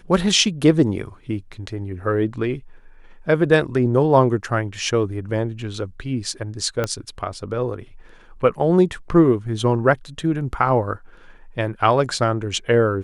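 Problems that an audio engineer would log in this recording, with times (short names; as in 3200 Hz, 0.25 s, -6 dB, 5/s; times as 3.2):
6.84 pop -9 dBFS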